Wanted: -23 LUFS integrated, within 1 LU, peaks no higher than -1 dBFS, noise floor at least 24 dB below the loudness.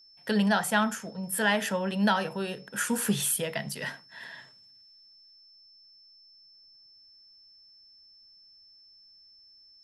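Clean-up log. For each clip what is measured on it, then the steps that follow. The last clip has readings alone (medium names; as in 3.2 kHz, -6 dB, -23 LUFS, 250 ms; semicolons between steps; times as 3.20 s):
steady tone 5.3 kHz; tone level -54 dBFS; loudness -28.0 LUFS; peak level -12.0 dBFS; loudness target -23.0 LUFS
-> band-stop 5.3 kHz, Q 30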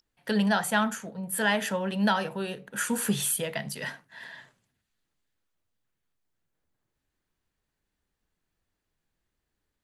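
steady tone not found; loudness -28.0 LUFS; peak level -12.0 dBFS; loudness target -23.0 LUFS
-> trim +5 dB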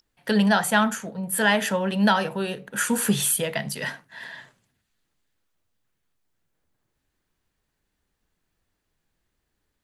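loudness -23.0 LUFS; peak level -7.0 dBFS; noise floor -78 dBFS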